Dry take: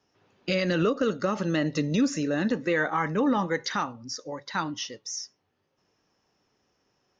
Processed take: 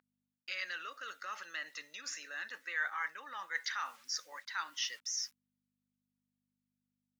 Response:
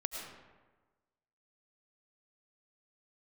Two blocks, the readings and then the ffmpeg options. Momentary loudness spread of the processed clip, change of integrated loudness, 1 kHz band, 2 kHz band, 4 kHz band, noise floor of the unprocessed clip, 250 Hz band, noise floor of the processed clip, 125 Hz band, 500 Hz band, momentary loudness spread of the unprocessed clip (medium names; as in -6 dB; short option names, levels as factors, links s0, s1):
8 LU, -12.0 dB, -12.0 dB, -5.5 dB, -5.0 dB, -75 dBFS, under -40 dB, under -85 dBFS, under -40 dB, -30.0 dB, 11 LU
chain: -af "agate=range=0.0224:threshold=0.00251:ratio=3:detection=peak,acrusher=bits=9:mix=0:aa=0.000001,aeval=exprs='val(0)+0.00708*(sin(2*PI*50*n/s)+sin(2*PI*2*50*n/s)/2+sin(2*PI*3*50*n/s)/3+sin(2*PI*4*50*n/s)/4+sin(2*PI*5*50*n/s)/5)':c=same,areverse,acompressor=threshold=0.0178:ratio=6,areverse,highpass=f=1600:t=q:w=1.8,volume=1.12"